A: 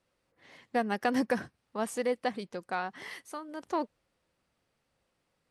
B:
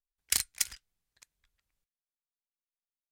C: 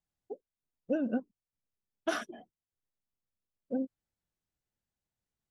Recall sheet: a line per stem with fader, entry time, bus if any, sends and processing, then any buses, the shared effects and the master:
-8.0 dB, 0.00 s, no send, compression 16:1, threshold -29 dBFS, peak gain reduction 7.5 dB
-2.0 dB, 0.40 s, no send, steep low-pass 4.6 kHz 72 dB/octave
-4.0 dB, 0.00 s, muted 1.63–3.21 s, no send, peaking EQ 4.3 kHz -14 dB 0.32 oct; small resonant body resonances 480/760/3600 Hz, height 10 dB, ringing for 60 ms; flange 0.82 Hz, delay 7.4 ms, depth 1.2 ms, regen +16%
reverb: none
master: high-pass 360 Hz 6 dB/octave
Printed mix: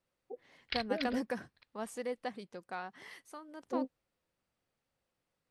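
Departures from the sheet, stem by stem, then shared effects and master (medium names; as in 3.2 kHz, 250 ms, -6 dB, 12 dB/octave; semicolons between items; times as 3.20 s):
stem A: missing compression 16:1, threshold -29 dBFS, peak gain reduction 7.5 dB; master: missing high-pass 360 Hz 6 dB/octave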